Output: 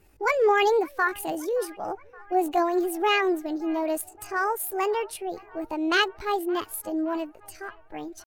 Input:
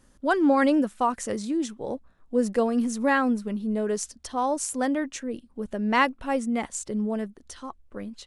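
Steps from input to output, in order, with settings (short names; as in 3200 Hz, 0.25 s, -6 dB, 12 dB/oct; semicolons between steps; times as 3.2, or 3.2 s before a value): bin magnitudes rounded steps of 15 dB; pitch shift +7 st; band-limited delay 0.571 s, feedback 65%, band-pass 1200 Hz, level -21.5 dB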